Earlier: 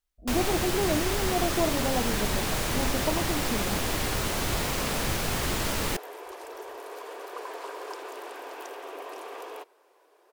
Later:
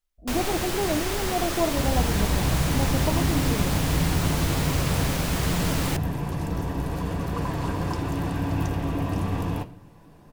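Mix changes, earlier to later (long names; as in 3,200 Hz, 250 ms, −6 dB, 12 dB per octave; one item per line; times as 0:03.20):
second sound: remove elliptic high-pass filter 400 Hz, stop band 60 dB
reverb: on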